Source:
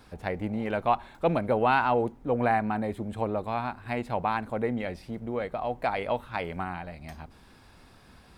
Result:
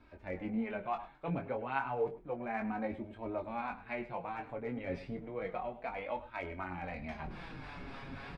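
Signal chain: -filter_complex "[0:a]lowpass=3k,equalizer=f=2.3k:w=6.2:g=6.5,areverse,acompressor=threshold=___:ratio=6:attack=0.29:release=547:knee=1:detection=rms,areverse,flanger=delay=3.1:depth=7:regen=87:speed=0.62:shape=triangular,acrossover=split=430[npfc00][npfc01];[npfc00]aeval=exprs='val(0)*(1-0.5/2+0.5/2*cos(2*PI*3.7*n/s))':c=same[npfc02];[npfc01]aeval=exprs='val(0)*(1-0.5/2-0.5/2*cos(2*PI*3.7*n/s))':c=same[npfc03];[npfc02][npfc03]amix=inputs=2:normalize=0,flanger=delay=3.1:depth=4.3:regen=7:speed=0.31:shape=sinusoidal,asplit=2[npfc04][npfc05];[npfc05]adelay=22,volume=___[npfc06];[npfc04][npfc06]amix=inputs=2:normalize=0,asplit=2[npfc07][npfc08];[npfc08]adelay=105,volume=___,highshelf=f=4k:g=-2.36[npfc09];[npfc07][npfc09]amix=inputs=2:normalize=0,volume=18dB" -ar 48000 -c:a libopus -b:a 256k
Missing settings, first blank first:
-41dB, -6dB, -15dB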